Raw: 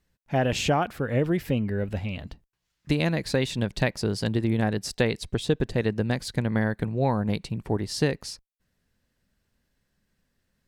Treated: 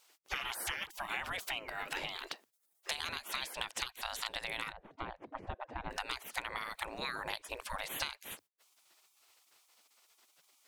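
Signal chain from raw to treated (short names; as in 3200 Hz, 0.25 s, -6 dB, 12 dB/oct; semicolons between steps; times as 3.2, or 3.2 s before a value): spectral gate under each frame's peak -25 dB weak; 4.72–5.91 Bessel low-pass 520 Hz, order 2; compressor 6:1, threshold -52 dBFS, peak gain reduction 17 dB; gain +16 dB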